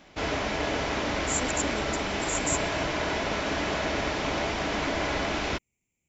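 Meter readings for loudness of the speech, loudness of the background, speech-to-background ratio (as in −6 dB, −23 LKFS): −33.0 LKFS, −28.5 LKFS, −4.5 dB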